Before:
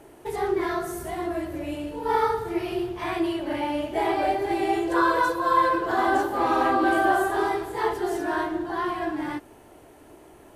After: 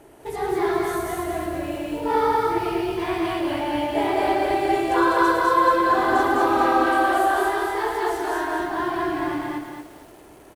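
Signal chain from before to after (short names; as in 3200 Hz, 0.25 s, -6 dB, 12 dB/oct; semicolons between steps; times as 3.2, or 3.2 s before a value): 6.66–8.6 bell 150 Hz -14 dB 1.5 oct; on a send: loudspeakers at several distances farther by 38 m -7 dB, 69 m -2 dB; on the sum: lo-fi delay 0.228 s, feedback 35%, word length 8-bit, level -5 dB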